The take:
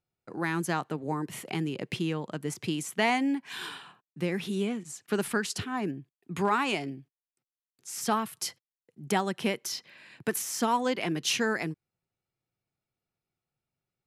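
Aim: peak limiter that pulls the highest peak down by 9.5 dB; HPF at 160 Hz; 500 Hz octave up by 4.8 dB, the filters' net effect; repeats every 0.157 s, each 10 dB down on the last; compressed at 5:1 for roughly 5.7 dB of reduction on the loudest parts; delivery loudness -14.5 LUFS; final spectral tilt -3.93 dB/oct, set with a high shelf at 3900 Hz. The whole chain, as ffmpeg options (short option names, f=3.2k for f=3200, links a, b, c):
-af "highpass=160,equalizer=f=500:t=o:g=6,highshelf=f=3.9k:g=6.5,acompressor=threshold=-25dB:ratio=5,alimiter=limit=-23.5dB:level=0:latency=1,aecho=1:1:157|314|471|628:0.316|0.101|0.0324|0.0104,volume=19dB"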